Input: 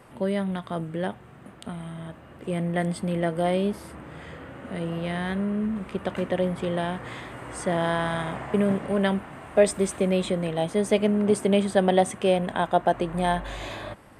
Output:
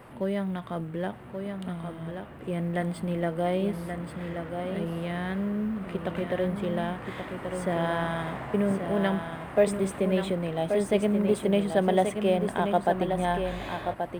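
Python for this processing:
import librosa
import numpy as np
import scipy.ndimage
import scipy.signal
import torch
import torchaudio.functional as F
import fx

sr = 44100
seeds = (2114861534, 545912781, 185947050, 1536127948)

y = fx.law_mismatch(x, sr, coded='mu')
y = fx.peak_eq(y, sr, hz=6400.0, db=-8.5, octaves=1.2)
y = y + 10.0 ** (-6.5 / 20.0) * np.pad(y, (int(1130 * sr / 1000.0), 0))[:len(y)]
y = y * librosa.db_to_amplitude(-3.5)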